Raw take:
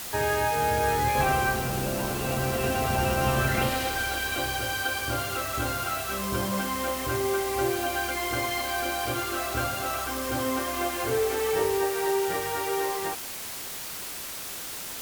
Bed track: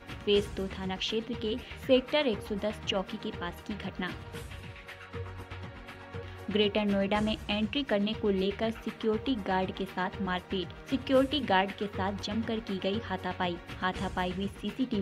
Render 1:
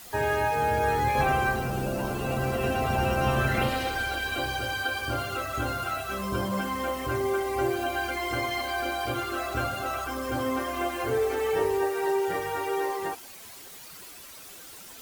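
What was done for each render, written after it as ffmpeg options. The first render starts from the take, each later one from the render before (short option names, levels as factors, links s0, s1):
-af "afftdn=nr=11:nf=-37"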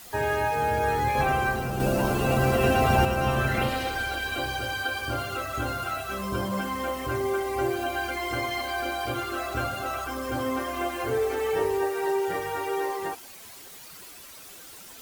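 -filter_complex "[0:a]asplit=3[s0][s1][s2];[s0]atrim=end=1.802[s3];[s1]atrim=start=1.798:end=3.052,asetpts=PTS-STARTPTS,volume=1.88[s4];[s2]atrim=start=3.048[s5];[s3][s4]acrossfade=d=0.004:c1=hsin:c2=hsin[s6];[s6][s5]acrossfade=d=0.004:c1=hsin:c2=hsin"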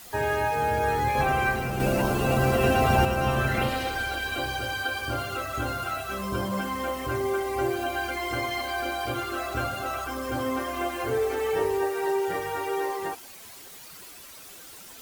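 -filter_complex "[0:a]asettb=1/sr,asplit=3[s0][s1][s2];[s0]atrim=end=1.374[s3];[s1]atrim=start=1.37:end=2.02,asetpts=PTS-STARTPTS,afade=t=in:d=0.004:c=qsin,afade=t=out:st=0.646:d=0.004:c=qsin,equalizer=f=2200:t=o:w=0.57:g=6.5[s4];[s2]atrim=start=2.016[s5];[s3][s4]acrossfade=d=0.004:c1=hsin:c2=qsin[s6];[s6][s5]acrossfade=d=0.004:c1=qsin:c2=hsin"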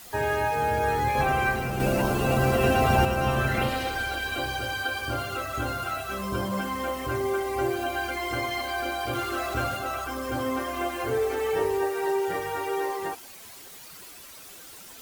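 -filter_complex "[0:a]asettb=1/sr,asplit=3[s0][s1][s2];[s0]atrim=end=9.134[s3];[s1]atrim=start=9.13:end=9.77,asetpts=PTS-STARTPTS,afade=t=in:d=0.004:c=qsin,afade=t=out:st=0.636:d=0.004:c=qsin,aeval=exprs='val(0)+0.5*0.0126*sgn(val(0))':c=same[s4];[s2]atrim=start=9.766[s5];[s3][s4]acrossfade=d=0.004:c1=hsin:c2=qsin[s6];[s6][s5]acrossfade=d=0.004:c1=qsin:c2=hsin"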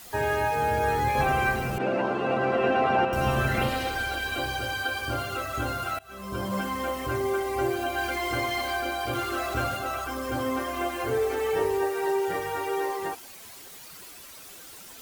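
-filter_complex "[0:a]asettb=1/sr,asplit=3[s0][s1][s2];[s0]atrim=end=1.784[s3];[s1]atrim=start=1.78:end=3.13,asetpts=PTS-STARTPTS,afade=t=in:d=0.004:c=qsin,afade=t=out:st=1.346:d=0.004:c=qsin,highpass=260,lowpass=2400[s4];[s2]atrim=start=3.126[s5];[s3][s4]acrossfade=d=0.004:c1=hsin:c2=qsin[s6];[s6][s5]acrossfade=d=0.004:c1=qsin:c2=hsin,asettb=1/sr,asplit=3[s7][s8][s9];[s7]atrim=end=7.984[s10];[s8]atrim=start=7.98:end=8.78,asetpts=PTS-STARTPTS,afade=t=in:d=0.004:c=qsin,afade=t=out:st=0.796:d=0.004:c=qsin,aeval=exprs='val(0)+0.5*0.0119*sgn(val(0))':c=same[s11];[s9]atrim=start=8.776[s12];[s10][s11]acrossfade=d=0.004:c1=hsin:c2=qsin[s13];[s13][s12]acrossfade=d=0.004:c1=qsin:c2=hsin,asplit=2[s14][s15];[s14]atrim=end=5.99,asetpts=PTS-STARTPTS,afade=t=out:st=5.986:d=0.004:c=hsin:silence=0.0630957[s16];[s15]atrim=start=5.99,asetpts=PTS-STARTPTS,afade=t=in:d=0.56:silence=0.0630957[s17];[s16][s17]concat=n=2:v=0:a=1"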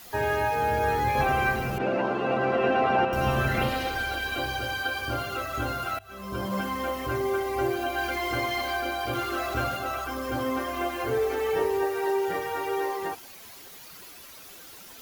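-af "equalizer=f=8400:t=o:w=0.4:g=-6.5,bandreject=f=49.62:t=h:w=4,bandreject=f=99.24:t=h:w=4,bandreject=f=148.86:t=h:w=4"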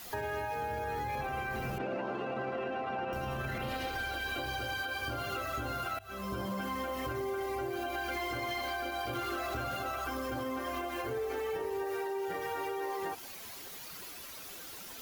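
-af "alimiter=limit=0.0668:level=0:latency=1:release=103,acompressor=threshold=0.02:ratio=3"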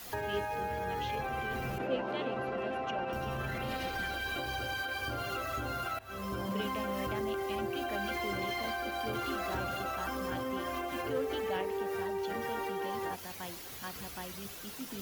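-filter_complex "[1:a]volume=0.224[s0];[0:a][s0]amix=inputs=2:normalize=0"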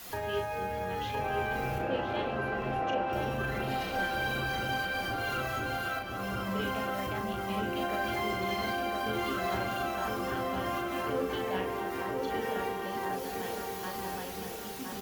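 -filter_complex "[0:a]asplit=2[s0][s1];[s1]adelay=37,volume=0.562[s2];[s0][s2]amix=inputs=2:normalize=0,asplit=2[s3][s4];[s4]adelay=1014,lowpass=f=2000:p=1,volume=0.708,asplit=2[s5][s6];[s6]adelay=1014,lowpass=f=2000:p=1,volume=0.53,asplit=2[s7][s8];[s8]adelay=1014,lowpass=f=2000:p=1,volume=0.53,asplit=2[s9][s10];[s10]adelay=1014,lowpass=f=2000:p=1,volume=0.53,asplit=2[s11][s12];[s12]adelay=1014,lowpass=f=2000:p=1,volume=0.53,asplit=2[s13][s14];[s14]adelay=1014,lowpass=f=2000:p=1,volume=0.53,asplit=2[s15][s16];[s16]adelay=1014,lowpass=f=2000:p=1,volume=0.53[s17];[s3][s5][s7][s9][s11][s13][s15][s17]amix=inputs=8:normalize=0"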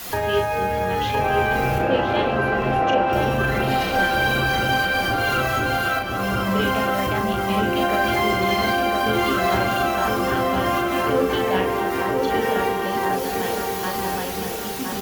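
-af "volume=3.98"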